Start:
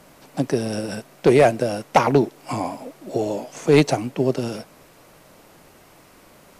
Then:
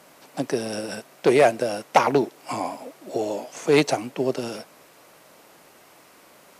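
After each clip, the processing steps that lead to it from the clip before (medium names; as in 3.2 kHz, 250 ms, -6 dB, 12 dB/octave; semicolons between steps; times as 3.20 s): high-pass 390 Hz 6 dB/octave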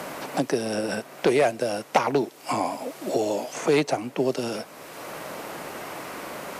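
three bands compressed up and down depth 70%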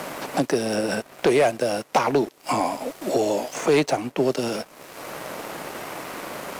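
waveshaping leveller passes 2; trim -4.5 dB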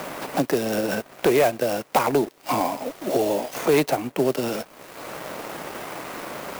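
sampling jitter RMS 0.031 ms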